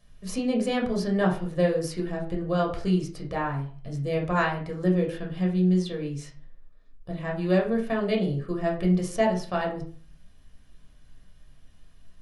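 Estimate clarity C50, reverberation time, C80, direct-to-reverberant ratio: 9.0 dB, 0.40 s, 14.0 dB, -1.5 dB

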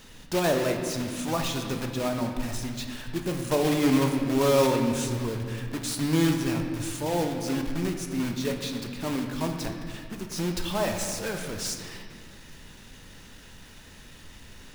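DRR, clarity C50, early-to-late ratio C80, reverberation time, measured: 3.0 dB, 5.0 dB, 6.0 dB, 2.0 s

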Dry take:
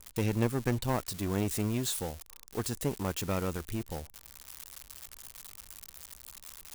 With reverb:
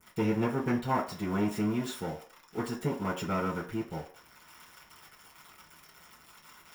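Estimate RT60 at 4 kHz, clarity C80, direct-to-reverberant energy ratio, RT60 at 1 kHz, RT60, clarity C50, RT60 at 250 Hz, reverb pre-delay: 0.45 s, 14.0 dB, -10.5 dB, 0.45 s, 0.45 s, 10.0 dB, 0.35 s, 4 ms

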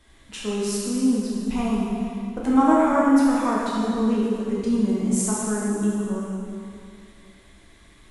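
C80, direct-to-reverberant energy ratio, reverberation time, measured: -0.5 dB, -6.5 dB, 2.5 s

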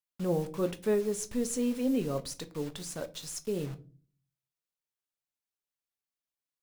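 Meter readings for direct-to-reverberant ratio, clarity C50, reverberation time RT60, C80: 9.0 dB, 19.5 dB, 0.40 s, 25.0 dB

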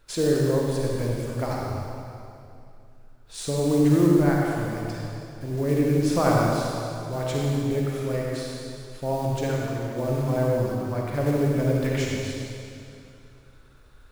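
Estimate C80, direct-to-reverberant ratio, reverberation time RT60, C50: -1.0 dB, -3.0 dB, 2.6 s, -2.5 dB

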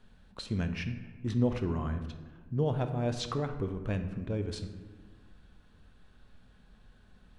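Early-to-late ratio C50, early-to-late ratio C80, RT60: 9.5 dB, 11.0 dB, 1.4 s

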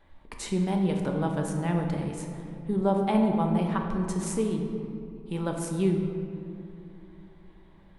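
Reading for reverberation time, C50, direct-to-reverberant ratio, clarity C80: 2.7 s, 4.0 dB, 2.0 dB, 5.0 dB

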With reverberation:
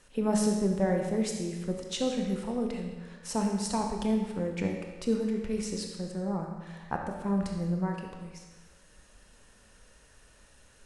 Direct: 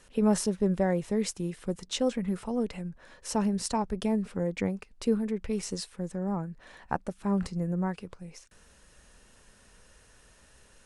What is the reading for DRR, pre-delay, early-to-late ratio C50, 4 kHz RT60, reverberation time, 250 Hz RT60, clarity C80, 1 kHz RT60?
2.0 dB, 24 ms, 3.5 dB, 1.1 s, 1.2 s, 1.3 s, 5.5 dB, 1.2 s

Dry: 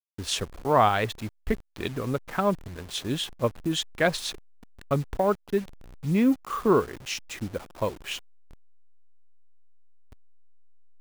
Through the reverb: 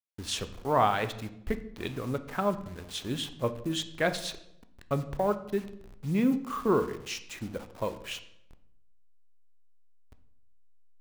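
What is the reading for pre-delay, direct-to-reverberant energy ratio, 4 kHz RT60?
10 ms, 9.5 dB, 0.60 s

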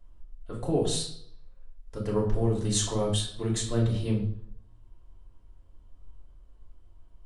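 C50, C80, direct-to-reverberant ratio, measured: 6.5 dB, 9.5 dB, -4.0 dB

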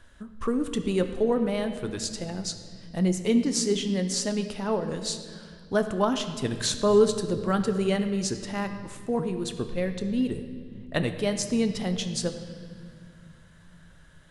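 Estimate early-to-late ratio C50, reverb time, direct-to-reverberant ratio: 9.0 dB, 2.0 s, 7.5 dB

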